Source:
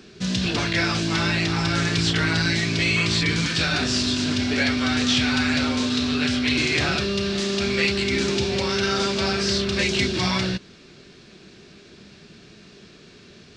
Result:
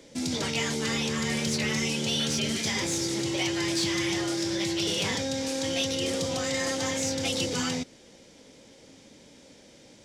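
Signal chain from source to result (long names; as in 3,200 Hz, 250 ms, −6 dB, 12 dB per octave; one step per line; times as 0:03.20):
wrong playback speed 33 rpm record played at 45 rpm
soft clipping −12.5 dBFS, distortion −24 dB
level −5.5 dB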